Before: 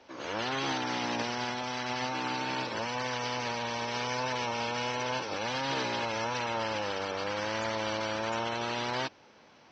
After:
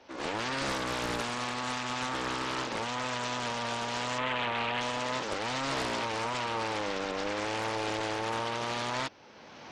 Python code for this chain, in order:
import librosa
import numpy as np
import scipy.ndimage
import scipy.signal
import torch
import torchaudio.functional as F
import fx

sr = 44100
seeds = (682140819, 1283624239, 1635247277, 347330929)

y = fx.recorder_agc(x, sr, target_db=-23.5, rise_db_per_s=18.0, max_gain_db=30)
y = fx.high_shelf_res(y, sr, hz=3200.0, db=-9.5, q=3.0, at=(4.18, 4.81))
y = fx.doppler_dist(y, sr, depth_ms=0.98)